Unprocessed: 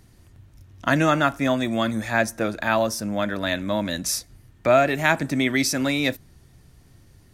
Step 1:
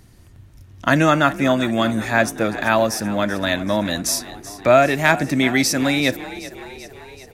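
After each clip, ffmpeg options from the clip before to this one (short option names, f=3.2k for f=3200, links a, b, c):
-filter_complex "[0:a]asoftclip=type=hard:threshold=-6dB,asplit=7[a][b][c][d][e][f][g];[b]adelay=383,afreqshift=41,volume=-16dB[h];[c]adelay=766,afreqshift=82,volume=-20.2dB[i];[d]adelay=1149,afreqshift=123,volume=-24.3dB[j];[e]adelay=1532,afreqshift=164,volume=-28.5dB[k];[f]adelay=1915,afreqshift=205,volume=-32.6dB[l];[g]adelay=2298,afreqshift=246,volume=-36.8dB[m];[a][h][i][j][k][l][m]amix=inputs=7:normalize=0,volume=4dB"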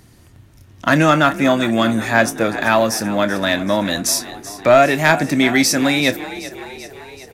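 -filter_complex "[0:a]lowshelf=f=72:g=-10.5,asoftclip=type=tanh:threshold=-5.5dB,asplit=2[a][b];[b]adelay=26,volume=-13dB[c];[a][c]amix=inputs=2:normalize=0,volume=3.5dB"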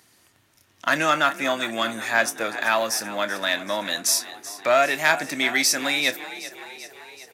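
-af "highpass=f=1.1k:p=1,volume=-2.5dB"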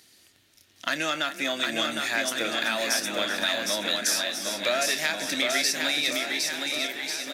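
-filter_complex "[0:a]equalizer=f=125:t=o:w=1:g=-6,equalizer=f=1k:t=o:w=1:g=-9,equalizer=f=4k:t=o:w=1:g=6,acompressor=threshold=-24dB:ratio=4,asplit=2[a][b];[b]aecho=0:1:760|1444|2060|2614|3112:0.631|0.398|0.251|0.158|0.1[c];[a][c]amix=inputs=2:normalize=0"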